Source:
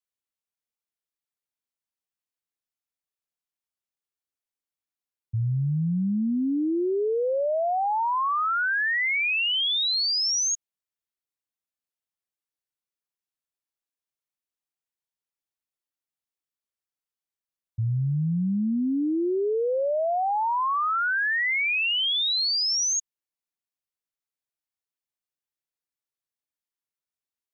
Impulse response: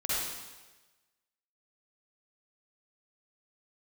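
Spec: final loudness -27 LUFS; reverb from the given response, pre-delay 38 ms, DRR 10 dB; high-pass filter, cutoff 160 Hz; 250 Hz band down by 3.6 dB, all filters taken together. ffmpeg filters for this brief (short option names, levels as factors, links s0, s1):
-filter_complex "[0:a]highpass=160,equalizer=f=250:t=o:g=-3.5,asplit=2[s0][s1];[1:a]atrim=start_sample=2205,adelay=38[s2];[s1][s2]afir=irnorm=-1:irlink=0,volume=0.126[s3];[s0][s3]amix=inputs=2:normalize=0,volume=0.708"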